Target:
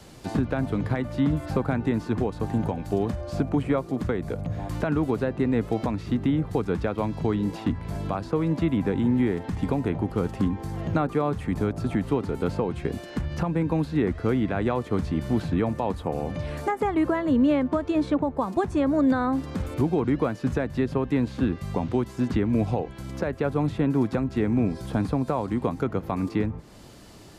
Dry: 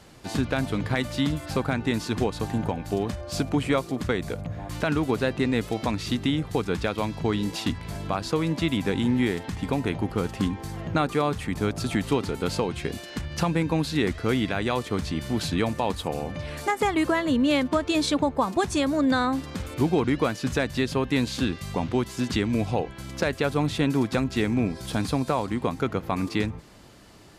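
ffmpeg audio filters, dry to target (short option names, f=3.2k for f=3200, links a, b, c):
-filter_complex "[0:a]equalizer=f=1.7k:w=0.65:g=-4,acrossover=split=230|1400|1900[a][b][c][d];[d]acompressor=threshold=-53dB:ratio=10[e];[a][b][c][e]amix=inputs=4:normalize=0,alimiter=limit=-17.5dB:level=0:latency=1:release=481,volume=4dB"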